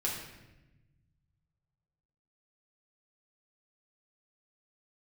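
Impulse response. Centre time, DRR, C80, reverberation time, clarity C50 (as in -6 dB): 49 ms, -5.0 dB, 6.0 dB, 1.0 s, 3.0 dB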